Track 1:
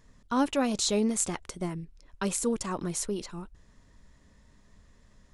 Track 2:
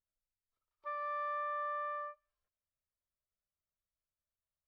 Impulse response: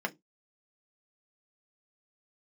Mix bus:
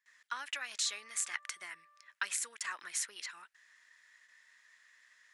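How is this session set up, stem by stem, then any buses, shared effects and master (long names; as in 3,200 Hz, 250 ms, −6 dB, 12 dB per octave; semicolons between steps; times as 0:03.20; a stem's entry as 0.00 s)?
−0.5 dB, 0.00 s, no send, noise gate with hold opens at −50 dBFS; downward compressor 12 to 1, threshold −30 dBFS, peak gain reduction 10 dB
+2.0 dB, 0.00 s, no send, downward compressor 3 to 1, threshold −48 dBFS, peak gain reduction 9.5 dB; Savitzky-Golay smoothing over 65 samples; automatic ducking −13 dB, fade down 2.00 s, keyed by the first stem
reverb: not used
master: high-pass with resonance 1,800 Hz, resonance Q 3.5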